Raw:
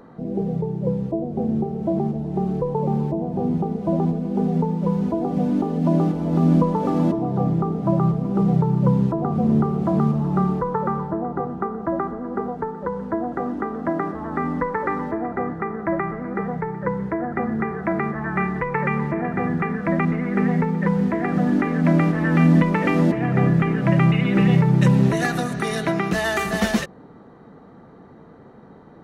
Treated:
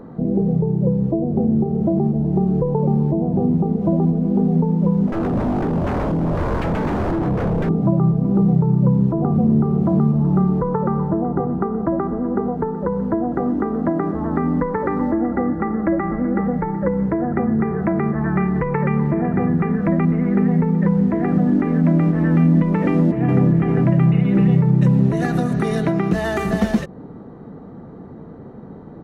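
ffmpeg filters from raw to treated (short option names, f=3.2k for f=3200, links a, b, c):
-filter_complex "[0:a]asettb=1/sr,asplit=3[a][b][c];[a]atrim=end=5.074[d];[b]atrim=start=5.07:end=7.69,asetpts=PTS-STARTPTS,afade=t=in:d=0.004:c=qsin,afade=t=out:st=2.616:d=0.004:c=qsin,aeval=exprs='0.0794*(abs(mod(val(0)/0.0794+3,4)-2)-1)':c=same[e];[c]atrim=start=7.686[f];[d][e]acrossfade=d=0.004:c1=hsin:c2=qsin[g];[g][f]acrossfade=d=0.004:c1=qsin:c2=hsin,asettb=1/sr,asplit=3[h][i][j];[h]atrim=end=15.004[k];[i]atrim=start=15:end=17.08,asetpts=PTS-STARTPTS,afade=t=in:d=0.004:c=qsin,afade=t=out:st=2.076:d=0.004:c=qsin,aecho=1:1:3.6:0.65,atrim=end_sample=91728[l];[j]atrim=start=17.076[m];[k][l]acrossfade=d=0.004:c1=hsin:c2=qsin[n];[n][m]acrossfade=d=0.004:c1=qsin:c2=hsin,asplit=2[o][p];[p]afade=t=in:st=22.88:d=0.01,afade=t=out:st=23.44:d=0.01,aecho=0:1:400|800|1200|1600|2000|2400:0.595662|0.268048|0.120622|0.0542797|0.0244259|0.0109916[q];[o][q]amix=inputs=2:normalize=0,tiltshelf=f=1.3k:g=3.5,acompressor=threshold=-22dB:ratio=2.5,lowshelf=f=500:g=7.5"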